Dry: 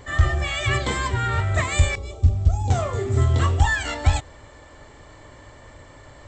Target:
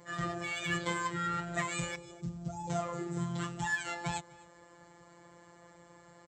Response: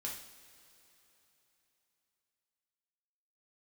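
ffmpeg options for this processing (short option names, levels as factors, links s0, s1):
-filter_complex "[0:a]asettb=1/sr,asplit=3[s0][s1][s2];[s0]atrim=end=3.174[s3];[s1]atrim=start=3.17:end=3.87,asetpts=PTS-STARTPTS,afade=t=in:d=0.004:c=qsin,afade=t=out:st=0.696:d=0.004:c=qsin,equalizer=f=520:w=1.5:g=-10[s4];[s2]atrim=start=3.866[s5];[s3][s4]acrossfade=d=0.004:c1=hsin:c2=qsin[s6];[s6][s5]acrossfade=d=0.004:c1=qsin:c2=hsin,acrossover=split=230|3500[s7][s8][s9];[s8]adynamicsmooth=sensitivity=4:basefreq=2700[s10];[s7][s10][s9]amix=inputs=3:normalize=0,afftfilt=real='hypot(re,im)*cos(PI*b)':imag='0':win_size=1024:overlap=0.75,highpass=f=63:w=0.5412,highpass=f=63:w=1.3066,aecho=1:1:252:0.0708,volume=0.531"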